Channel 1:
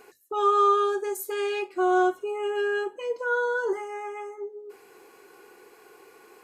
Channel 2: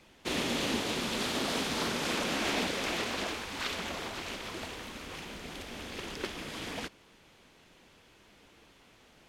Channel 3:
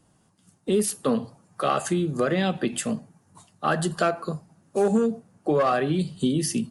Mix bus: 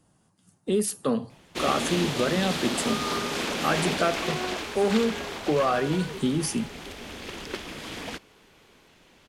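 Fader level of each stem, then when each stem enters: -13.5, +2.5, -2.0 dB; 2.45, 1.30, 0.00 s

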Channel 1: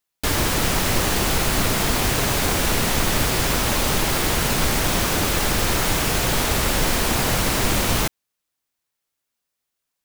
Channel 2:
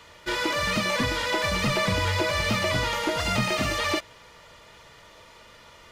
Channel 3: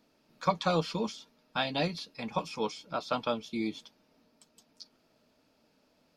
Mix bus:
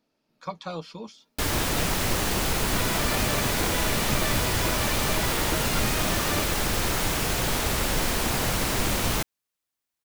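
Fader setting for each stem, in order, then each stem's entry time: -5.0, -7.5, -6.5 dB; 1.15, 2.45, 0.00 s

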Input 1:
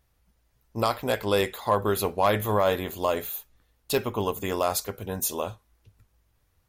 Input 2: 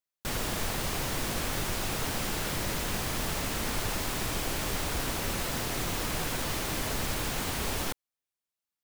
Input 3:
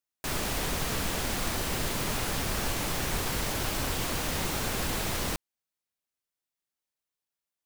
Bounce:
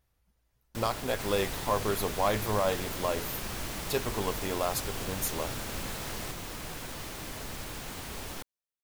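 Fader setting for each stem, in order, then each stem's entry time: -5.5, -8.0, -9.0 dB; 0.00, 0.50, 0.95 s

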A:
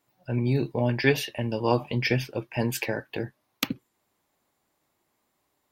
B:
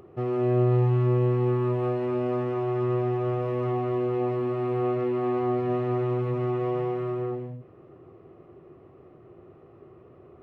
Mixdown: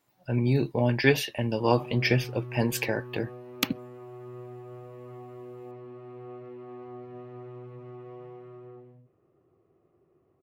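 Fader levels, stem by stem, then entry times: +0.5, -17.0 dB; 0.00, 1.45 s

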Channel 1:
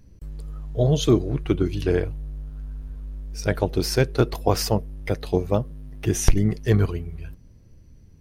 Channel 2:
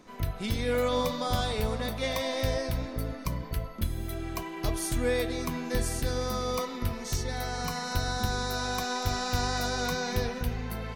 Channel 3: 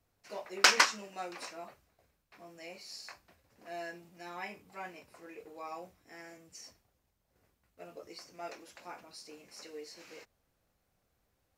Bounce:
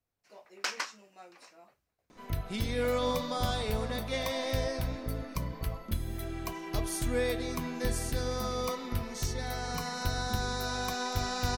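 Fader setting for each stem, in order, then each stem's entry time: off, -2.5 dB, -11.0 dB; off, 2.10 s, 0.00 s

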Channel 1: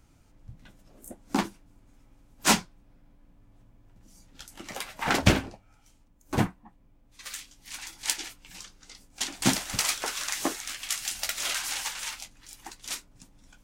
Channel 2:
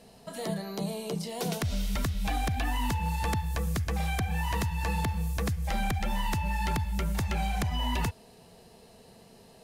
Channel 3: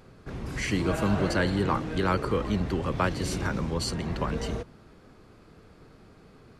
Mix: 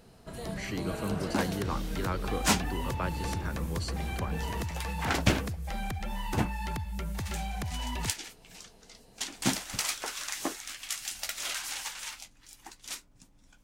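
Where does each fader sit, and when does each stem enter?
-4.5, -5.5, -8.0 dB; 0.00, 0.00, 0.00 s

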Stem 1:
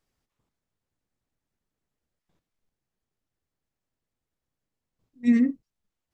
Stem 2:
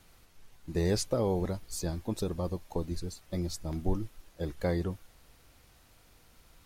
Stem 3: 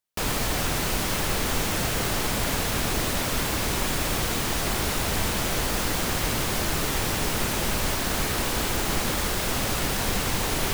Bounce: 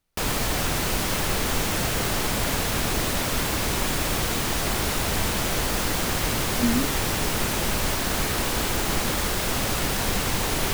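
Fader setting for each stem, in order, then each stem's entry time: -4.5, -18.0, +1.0 dB; 1.35, 0.00, 0.00 s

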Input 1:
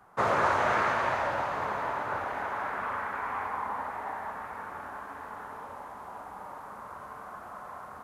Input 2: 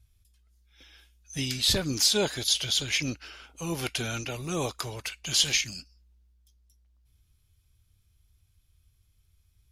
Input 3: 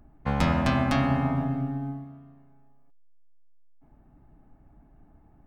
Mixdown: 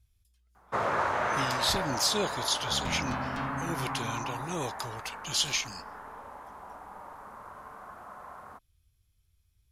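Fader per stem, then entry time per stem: -3.0, -4.5, -12.5 dB; 0.55, 0.00, 2.45 s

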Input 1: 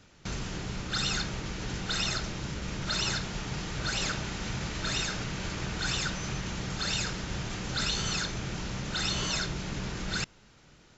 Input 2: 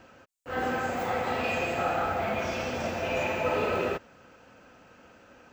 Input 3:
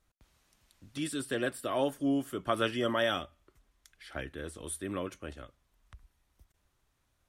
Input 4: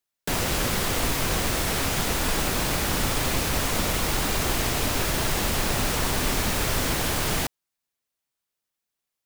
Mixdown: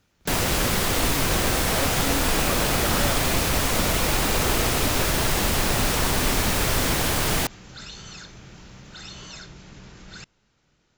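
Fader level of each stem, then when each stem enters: -9.5, -6.0, -2.0, +2.5 dB; 0.00, 0.90, 0.00, 0.00 s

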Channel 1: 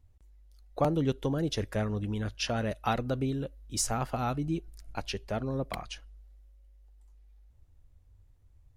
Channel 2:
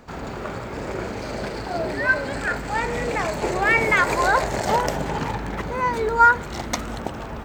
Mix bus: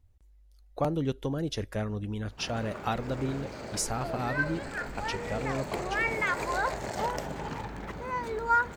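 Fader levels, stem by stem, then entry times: -1.5, -10.5 dB; 0.00, 2.30 s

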